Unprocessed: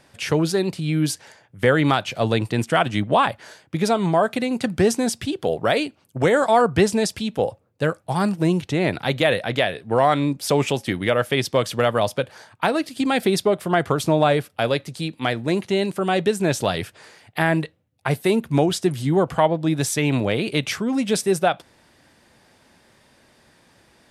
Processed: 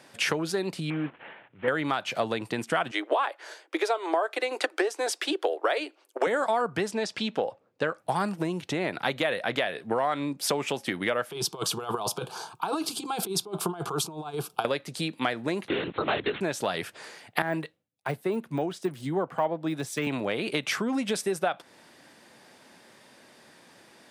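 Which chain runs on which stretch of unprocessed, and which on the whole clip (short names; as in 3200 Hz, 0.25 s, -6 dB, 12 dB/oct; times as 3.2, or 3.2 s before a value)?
0.9–1.68 CVSD 16 kbps + transient shaper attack -11 dB, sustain 0 dB
2.91–6.27 steep high-pass 310 Hz 72 dB/oct + high shelf 10000 Hz -7 dB + transient shaper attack +3 dB, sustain -2 dB
6.91–7.98 LPF 5500 Hz + low shelf 180 Hz -7 dB
11.31–14.65 negative-ratio compressor -25 dBFS, ratio -0.5 + fixed phaser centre 380 Hz, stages 8
15.68–16.41 careless resampling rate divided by 8×, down none, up zero stuff + LPC vocoder at 8 kHz whisper
17.42–20.07 de-esser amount 95% + three-band expander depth 100%
whole clip: compressor 10:1, threshold -27 dBFS; HPF 190 Hz 12 dB/oct; dynamic EQ 1300 Hz, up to +5 dB, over -44 dBFS, Q 0.71; gain +2 dB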